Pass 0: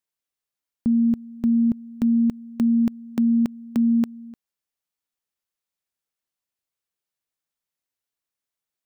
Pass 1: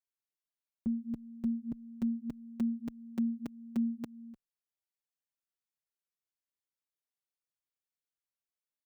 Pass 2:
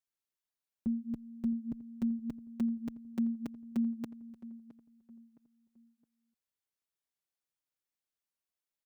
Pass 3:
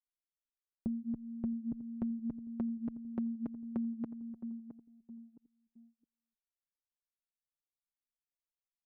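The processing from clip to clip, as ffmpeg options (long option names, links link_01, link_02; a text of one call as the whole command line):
ffmpeg -i in.wav -filter_complex "[0:a]asplit=2[link_01][link_02];[link_02]adelay=4.5,afreqshift=-1.7[link_03];[link_01][link_03]amix=inputs=2:normalize=1,volume=-8.5dB" out.wav
ffmpeg -i in.wav -filter_complex "[0:a]asplit=2[link_01][link_02];[link_02]adelay=665,lowpass=frequency=1500:poles=1,volume=-16dB,asplit=2[link_03][link_04];[link_04]adelay=665,lowpass=frequency=1500:poles=1,volume=0.38,asplit=2[link_05][link_06];[link_06]adelay=665,lowpass=frequency=1500:poles=1,volume=0.38[link_07];[link_01][link_03][link_05][link_07]amix=inputs=4:normalize=0" out.wav
ffmpeg -i in.wav -af "acompressor=threshold=-39dB:ratio=6,lowpass=1100,anlmdn=0.0000631,volume=5dB" out.wav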